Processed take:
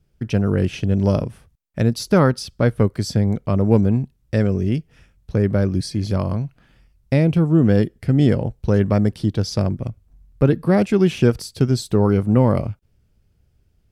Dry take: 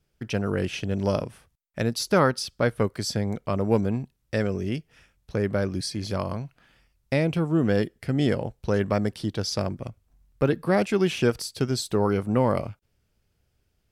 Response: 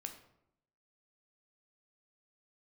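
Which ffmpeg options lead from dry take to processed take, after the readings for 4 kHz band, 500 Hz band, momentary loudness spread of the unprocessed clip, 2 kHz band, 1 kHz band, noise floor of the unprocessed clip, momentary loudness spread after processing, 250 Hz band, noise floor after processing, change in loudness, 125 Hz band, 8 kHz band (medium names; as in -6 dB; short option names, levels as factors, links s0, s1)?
0.0 dB, +4.0 dB, 9 LU, +0.5 dB, +1.5 dB, -73 dBFS, 8 LU, +8.0 dB, -63 dBFS, +7.0 dB, +10.0 dB, 0.0 dB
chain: -af "lowshelf=f=350:g=11.5"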